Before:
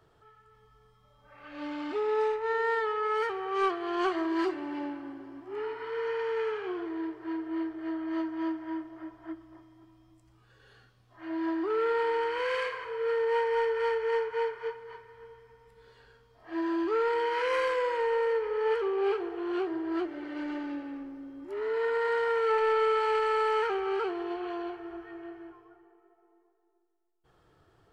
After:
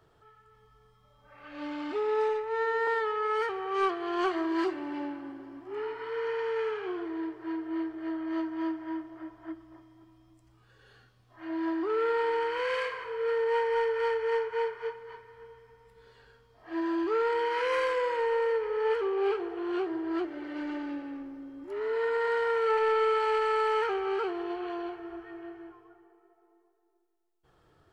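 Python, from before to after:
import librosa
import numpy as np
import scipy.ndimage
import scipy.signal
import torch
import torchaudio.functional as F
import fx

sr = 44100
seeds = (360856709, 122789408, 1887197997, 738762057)

y = fx.edit(x, sr, fx.stretch_span(start_s=2.29, length_s=0.39, factor=1.5), tone=tone)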